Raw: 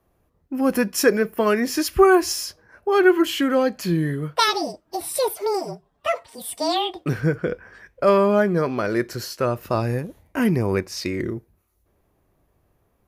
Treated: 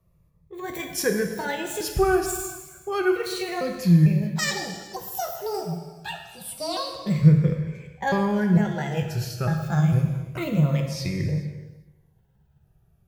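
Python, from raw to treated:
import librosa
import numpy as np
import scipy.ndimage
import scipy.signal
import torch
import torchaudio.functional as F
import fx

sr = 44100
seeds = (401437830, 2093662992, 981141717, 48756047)

y = fx.pitch_trill(x, sr, semitones=5.5, every_ms=451)
y = fx.low_shelf_res(y, sr, hz=200.0, db=7.5, q=3.0)
y = y + 10.0 ** (-23.0 / 20.0) * np.pad(y, (int(424 * sr / 1000.0), 0))[:len(y)]
y = fx.rev_gated(y, sr, seeds[0], gate_ms=450, shape='falling', drr_db=3.5)
y = fx.notch_cascade(y, sr, direction='falling', hz=0.28)
y = F.gain(torch.from_numpy(y), -5.0).numpy()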